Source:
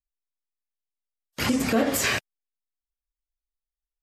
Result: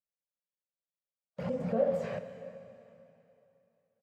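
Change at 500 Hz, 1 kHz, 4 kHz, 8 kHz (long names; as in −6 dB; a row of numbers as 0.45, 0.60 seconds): −1.5 dB, −11.5 dB, below −25 dB, below −30 dB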